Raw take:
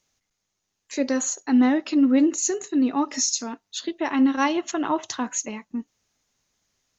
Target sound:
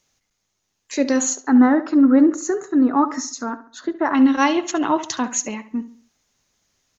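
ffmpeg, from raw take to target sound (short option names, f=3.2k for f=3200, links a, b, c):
-filter_complex "[0:a]asettb=1/sr,asplit=3[a][b][c];[a]atrim=end=1.404[d];[b]atrim=start=1.4:end=4.15,asetpts=PTS-STARTPTS,afade=t=in:d=0.004:c=qsin,afade=t=out:st=2.746:d=0.004:c=qsin,highshelf=f=2k:t=q:w=3:g=-10.5[e];[c]atrim=start=4.146[f];[d][e]acrossfade=d=0.004:c1=hsin:c2=qsin[g];[g][f]acrossfade=d=0.004:c1=qsin:c2=hsin,asplit=2[h][i];[i]adelay=69,lowpass=f=3.7k:p=1,volume=-14dB,asplit=2[j][k];[k]adelay=69,lowpass=f=3.7k:p=1,volume=0.4,asplit=2[l][m];[m]adelay=69,lowpass=f=3.7k:p=1,volume=0.4,asplit=2[n][o];[o]adelay=69,lowpass=f=3.7k:p=1,volume=0.4[p];[h][j][l][n][p]amix=inputs=5:normalize=0,volume=4.5dB"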